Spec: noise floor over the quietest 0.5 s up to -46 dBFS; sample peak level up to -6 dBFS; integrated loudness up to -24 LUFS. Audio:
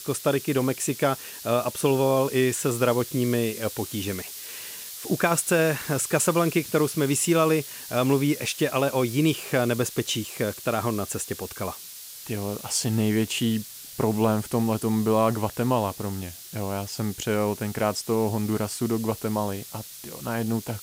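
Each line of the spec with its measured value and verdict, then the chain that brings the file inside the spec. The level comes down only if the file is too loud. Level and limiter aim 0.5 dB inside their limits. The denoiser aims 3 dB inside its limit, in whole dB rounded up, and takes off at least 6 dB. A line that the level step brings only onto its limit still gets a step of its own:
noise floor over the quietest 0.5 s -42 dBFS: fail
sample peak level -8.5 dBFS: OK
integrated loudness -25.5 LUFS: OK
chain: denoiser 7 dB, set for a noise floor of -42 dBFS

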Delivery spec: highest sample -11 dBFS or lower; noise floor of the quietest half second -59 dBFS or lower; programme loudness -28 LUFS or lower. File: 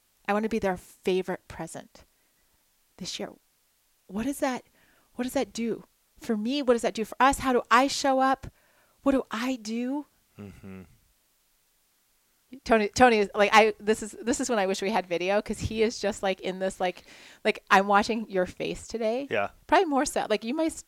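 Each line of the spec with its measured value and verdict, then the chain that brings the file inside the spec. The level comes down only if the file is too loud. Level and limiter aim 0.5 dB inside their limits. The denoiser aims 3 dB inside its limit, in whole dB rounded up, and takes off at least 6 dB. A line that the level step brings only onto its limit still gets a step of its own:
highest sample -6.0 dBFS: fail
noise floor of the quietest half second -69 dBFS: OK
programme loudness -26.5 LUFS: fail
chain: gain -2 dB; limiter -11.5 dBFS

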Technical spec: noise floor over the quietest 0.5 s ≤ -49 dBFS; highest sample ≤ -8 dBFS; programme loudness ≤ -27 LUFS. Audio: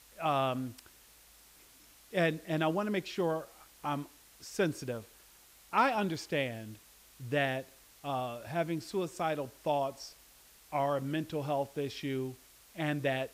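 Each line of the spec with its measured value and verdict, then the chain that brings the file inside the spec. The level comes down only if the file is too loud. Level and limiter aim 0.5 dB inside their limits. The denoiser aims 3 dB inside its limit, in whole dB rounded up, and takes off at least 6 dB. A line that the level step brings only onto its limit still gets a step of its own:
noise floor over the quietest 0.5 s -59 dBFS: OK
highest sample -16.0 dBFS: OK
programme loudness -34.0 LUFS: OK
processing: none

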